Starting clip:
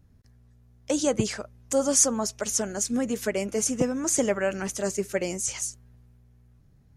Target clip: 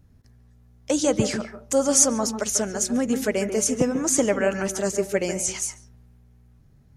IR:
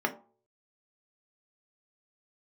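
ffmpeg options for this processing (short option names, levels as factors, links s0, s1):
-filter_complex "[0:a]asplit=2[s0][s1];[1:a]atrim=start_sample=2205,lowpass=7600,adelay=141[s2];[s1][s2]afir=irnorm=-1:irlink=0,volume=0.119[s3];[s0][s3]amix=inputs=2:normalize=0,volume=1.41"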